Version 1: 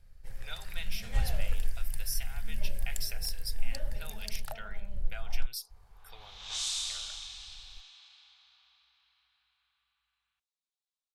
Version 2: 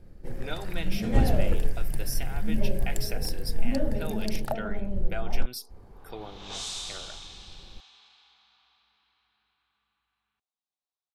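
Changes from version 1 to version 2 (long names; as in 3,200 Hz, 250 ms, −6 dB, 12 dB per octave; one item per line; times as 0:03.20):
second sound −3.5 dB
master: remove guitar amp tone stack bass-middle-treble 10-0-10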